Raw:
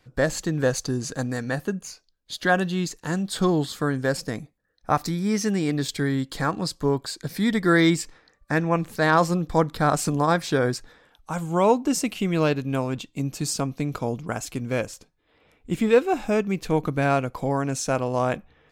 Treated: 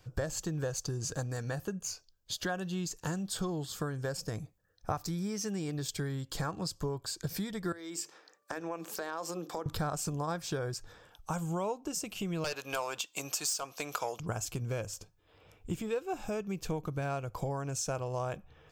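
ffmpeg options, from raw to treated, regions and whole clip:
ffmpeg -i in.wav -filter_complex "[0:a]asettb=1/sr,asplit=3[link_01][link_02][link_03];[link_01]atrim=end=7.724[link_04];[link_02]atrim=start=7.72:end=9.66,asetpts=PTS-STARTPTS,afade=type=in:duration=0.004:curve=qsin,afade=type=out:start_time=1.936:duration=0.004:curve=qsin,highpass=frequency=260:width=0.5412,highpass=frequency=260:width=1.3066,acompressor=threshold=-33dB:ratio=4:attack=3.2:release=140:knee=1:detection=peak,bandreject=frequency=50:width_type=h:width=6,bandreject=frequency=100:width_type=h:width=6,bandreject=frequency=150:width_type=h:width=6,bandreject=frequency=200:width_type=h:width=6,bandreject=frequency=250:width_type=h:width=6,bandreject=frequency=300:width_type=h:width=6,bandreject=frequency=350:width_type=h:width=6,bandreject=frequency=400:width_type=h:width=6,bandreject=frequency=450:width_type=h:width=6[link_05];[link_03]atrim=start=9.656[link_06];[link_04][link_05]acrossfade=duration=0.004:curve1=hsin:curve2=qsin[link_07];[link_07][link_06]acrossfade=duration=0.004:curve1=qsin:curve2=hsin,asettb=1/sr,asplit=3[link_08][link_09][link_10];[link_08]atrim=end=12.444[link_11];[link_09]atrim=start=12.44:end=14.2,asetpts=PTS-STARTPTS,afade=type=in:duration=0.004:curve=qsin,afade=type=out:start_time=1.756:duration=0.004:curve=qsin,highpass=780,aeval=exprs='0.224*sin(PI/2*2.51*val(0)/0.224)':channel_layout=same[link_12];[link_10]atrim=start=14.196[link_13];[link_11][link_12]acrossfade=duration=0.004:curve1=hsin:curve2=qsin[link_14];[link_14][link_13]acrossfade=duration=0.004:curve1=qsin:curve2=hsin,bass=frequency=250:gain=2,treble=frequency=4000:gain=6,acompressor=threshold=-31dB:ratio=6,equalizer=frequency=100:width_type=o:width=0.33:gain=9,equalizer=frequency=250:width_type=o:width=0.33:gain=-12,equalizer=frequency=2000:width_type=o:width=0.33:gain=-8,equalizer=frequency=4000:width_type=o:width=0.33:gain=-6,equalizer=frequency=10000:width_type=o:width=0.33:gain=-8" out.wav

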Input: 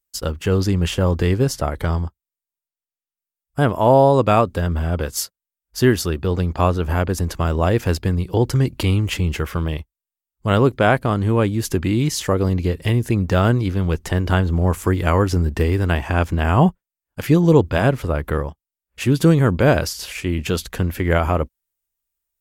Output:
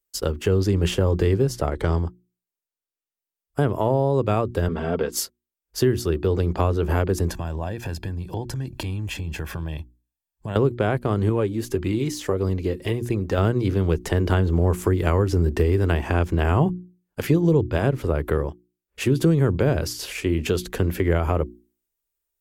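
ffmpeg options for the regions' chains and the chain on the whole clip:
ffmpeg -i in.wav -filter_complex "[0:a]asettb=1/sr,asplit=3[link_01][link_02][link_03];[link_01]atrim=end=1.664[link_04];[link_02]atrim=start=1.66:end=2.06,asetpts=PTS-STARTPTS,afade=type=in:duration=0.004:curve=qsin,afade=type=out:start_time=0.396:duration=0.004:curve=qsin,equalizer=frequency=7400:width=1.4:gain=5.5,adynamicsmooth=sensitivity=6.5:basefreq=5700[link_05];[link_03]atrim=start=2.056[link_06];[link_04][link_05]acrossfade=duration=0.004:curve1=hsin:curve2=qsin[link_07];[link_07][link_06]acrossfade=duration=0.004:curve1=qsin:curve2=hsin,asettb=1/sr,asplit=3[link_08][link_09][link_10];[link_08]atrim=end=4.684[link_11];[link_09]atrim=start=4.68:end=5.12,asetpts=PTS-STARTPTS,afade=type=in:duration=0.004:curve=qsin,afade=type=out:start_time=0.436:duration=0.004:curve=qsin,highpass=140,lowpass=4600,aecho=1:1:4.4:0.57,atrim=end_sample=19404[link_12];[link_10]atrim=start=5.116[link_13];[link_11][link_12]acrossfade=duration=0.004:curve1=hsin:curve2=qsin[link_14];[link_14][link_13]acrossfade=duration=0.004:curve1=qsin:curve2=hsin,asettb=1/sr,asplit=3[link_15][link_16][link_17];[link_15]atrim=end=7.294[link_18];[link_16]atrim=start=7.29:end=10.56,asetpts=PTS-STARTPTS,afade=type=in:duration=0.004:curve=qsin,afade=type=out:start_time=3.266:duration=0.004:curve=qsin,aecho=1:1:1.2:0.65,atrim=end_sample=144207,acompressor=threshold=-26dB:ratio=5:attack=3.2:release=140:knee=1:detection=peak[link_19];[link_17]atrim=start=10.556[link_20];[link_18][link_19]acrossfade=duration=0.004:curve1=hsin:curve2=qsin[link_21];[link_21][link_20]acrossfade=duration=0.004:curve1=qsin:curve2=hsin,asettb=1/sr,asplit=3[link_22][link_23][link_24];[link_22]atrim=end=11.294[link_25];[link_23]atrim=start=11.29:end=13.38,asetpts=PTS-STARTPTS,afade=type=in:duration=0.004:curve=qsin,afade=type=out:start_time=2.086:duration=0.004:curve=qsin,deesser=0.45,flanger=delay=0.8:depth=3.1:regen=61:speed=1.7:shape=sinusoidal[link_26];[link_24]atrim=start=13.376[link_27];[link_25][link_26]acrossfade=duration=0.004:curve1=hsin:curve2=qsin[link_28];[link_28][link_27]acrossfade=duration=0.004:curve1=qsin:curve2=hsin,equalizer=frequency=390:width=1.9:gain=8.5,bandreject=frequency=60:width_type=h:width=6,bandreject=frequency=120:width_type=h:width=6,bandreject=frequency=180:width_type=h:width=6,bandreject=frequency=240:width_type=h:width=6,bandreject=frequency=300:width_type=h:width=6,bandreject=frequency=360:width_type=h:width=6,acrossover=split=160[link_29][link_30];[link_30]acompressor=threshold=-18dB:ratio=5[link_31];[link_29][link_31]amix=inputs=2:normalize=0,volume=-1.5dB" out.wav

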